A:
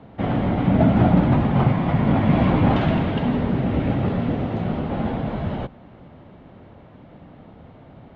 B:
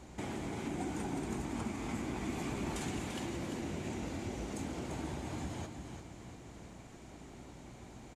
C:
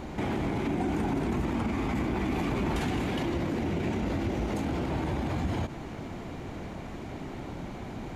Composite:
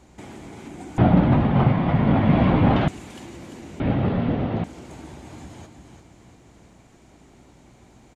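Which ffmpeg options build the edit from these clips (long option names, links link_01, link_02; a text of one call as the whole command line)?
ffmpeg -i take0.wav -i take1.wav -filter_complex "[0:a]asplit=2[link_01][link_02];[1:a]asplit=3[link_03][link_04][link_05];[link_03]atrim=end=0.982[link_06];[link_01]atrim=start=0.978:end=2.882[link_07];[link_04]atrim=start=2.878:end=3.802[link_08];[link_02]atrim=start=3.798:end=4.642[link_09];[link_05]atrim=start=4.638[link_10];[link_06][link_07]acrossfade=duration=0.004:curve1=hsin:curve2=hsin[link_11];[link_11][link_08]acrossfade=duration=0.004:curve1=hsin:curve2=hsin[link_12];[link_12][link_09]acrossfade=duration=0.004:curve1=hsin:curve2=hsin[link_13];[link_13][link_10]acrossfade=duration=0.004:curve1=hsin:curve2=hsin" out.wav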